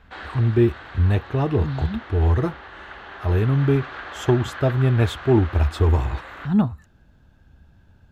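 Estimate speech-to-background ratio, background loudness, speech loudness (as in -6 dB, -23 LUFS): 16.0 dB, -37.5 LUFS, -21.5 LUFS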